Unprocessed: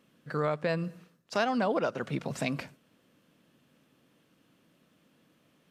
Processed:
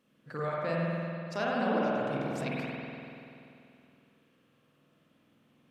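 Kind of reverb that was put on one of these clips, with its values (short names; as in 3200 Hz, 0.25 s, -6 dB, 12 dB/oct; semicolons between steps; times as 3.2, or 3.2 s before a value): spring tank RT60 2.7 s, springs 48 ms, chirp 75 ms, DRR -5 dB; gain -7 dB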